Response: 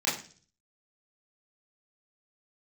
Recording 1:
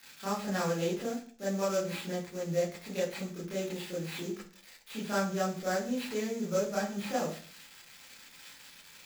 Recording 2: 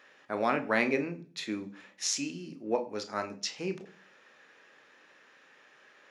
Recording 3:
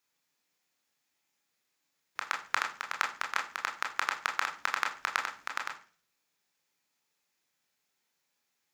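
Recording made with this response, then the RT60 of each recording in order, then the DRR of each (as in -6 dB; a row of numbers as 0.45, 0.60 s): 1; 0.40, 0.40, 0.40 s; -8.5, 7.5, 1.5 dB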